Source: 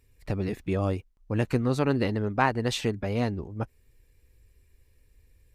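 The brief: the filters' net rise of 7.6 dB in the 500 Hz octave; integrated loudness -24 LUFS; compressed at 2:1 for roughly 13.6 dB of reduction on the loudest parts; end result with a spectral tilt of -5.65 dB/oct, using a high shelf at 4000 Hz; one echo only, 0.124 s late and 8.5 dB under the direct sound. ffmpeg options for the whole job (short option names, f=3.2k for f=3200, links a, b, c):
-af "equalizer=f=500:t=o:g=9,highshelf=f=4k:g=8,acompressor=threshold=-42dB:ratio=2,aecho=1:1:124:0.376,volume=12.5dB"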